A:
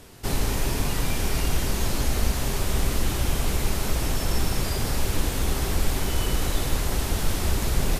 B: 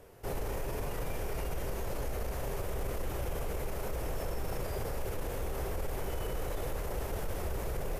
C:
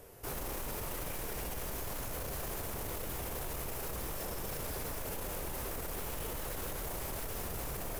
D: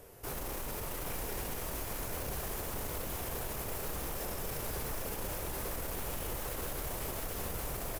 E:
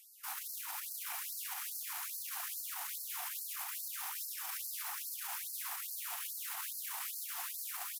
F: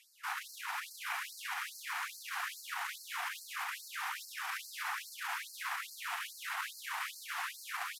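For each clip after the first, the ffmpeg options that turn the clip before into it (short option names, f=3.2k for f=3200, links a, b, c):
-af "equalizer=f=250:t=o:w=1:g=-7,equalizer=f=500:t=o:w=1:g=10,equalizer=f=4k:t=o:w=1:g=-9,equalizer=f=8k:t=o:w=1:g=-6,alimiter=limit=-18.5dB:level=0:latency=1:release=18,volume=-8.5dB"
-af "highshelf=f=6.2k:g=10.5,aeval=exprs='0.02*(abs(mod(val(0)/0.02+3,4)-2)-1)':c=same"
-af "aecho=1:1:803:0.562"
-af "afftfilt=real='re*gte(b*sr/1024,670*pow(4200/670,0.5+0.5*sin(2*PI*2.4*pts/sr)))':imag='im*gte(b*sr/1024,670*pow(4200/670,0.5+0.5*sin(2*PI*2.4*pts/sr)))':win_size=1024:overlap=0.75,volume=1dB"
-af "bandpass=f=1.6k:t=q:w=1.2:csg=0,volume=11dB"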